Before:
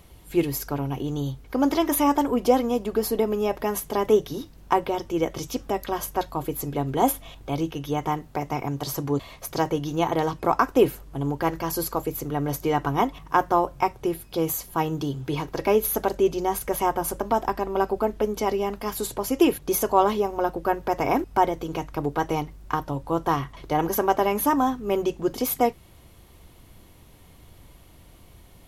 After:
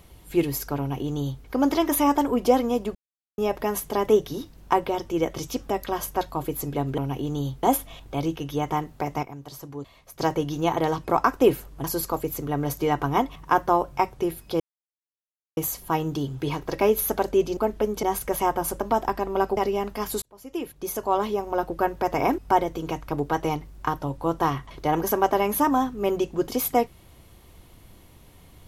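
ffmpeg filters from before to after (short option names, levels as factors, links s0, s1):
-filter_complex "[0:a]asplit=13[s0][s1][s2][s3][s4][s5][s6][s7][s8][s9][s10][s11][s12];[s0]atrim=end=2.95,asetpts=PTS-STARTPTS,afade=t=out:st=2.946:d=0.004:c=hsin[s13];[s1]atrim=start=2.95:end=3.38,asetpts=PTS-STARTPTS,volume=0[s14];[s2]atrim=start=3.38:end=6.982,asetpts=PTS-STARTPTS,afade=t=in:d=0.004:c=hsin[s15];[s3]atrim=start=0.788:end=1.442[s16];[s4]atrim=start=6.978:end=8.582[s17];[s5]atrim=start=8.578:end=9.542,asetpts=PTS-STARTPTS,volume=0.282[s18];[s6]atrim=start=9.538:end=11.192[s19];[s7]atrim=start=11.668:end=14.43,asetpts=PTS-STARTPTS,afade=t=out:st=2.758:d=0.004:c=hsin,apad=pad_dur=0.97[s20];[s8]atrim=start=14.43:end=16.432,asetpts=PTS-STARTPTS,afade=t=in:d=0.004:c=hsin[s21];[s9]atrim=start=17.968:end=18.432[s22];[s10]atrim=start=16.428:end=17.972[s23];[s11]atrim=start=18.428:end=19.08,asetpts=PTS-STARTPTS,afade=t=out:st=0.648:d=0.004:c=hsin[s24];[s12]atrim=start=19.08,asetpts=PTS-STARTPTS,afade=t=in:d=1.5[s25];[s13][s14][s15]concat=n=3:v=0:a=1[s26];[s26][s16]acrossfade=d=0.004:c1=hsin:c2=hsin[s27];[s27][s17]acrossfade=d=0.004:c1=hsin:c2=hsin[s28];[s28][s18]acrossfade=d=0.004:c1=hsin:c2=hsin[s29];[s29][s19]acrossfade=d=0.004:c1=hsin:c2=hsin[s30];[s20][s21]concat=n=2:v=0:a=1[s31];[s30][s31]acrossfade=d=0.004:c1=hsin:c2=hsin[s32];[s32][s22]acrossfade=d=0.004:c1=hsin:c2=hsin[s33];[s33][s23]acrossfade=d=0.004:c1=hsin:c2=hsin[s34];[s24][s25]concat=n=2:v=0:a=1[s35];[s34][s35]acrossfade=d=0.004:c1=hsin:c2=hsin"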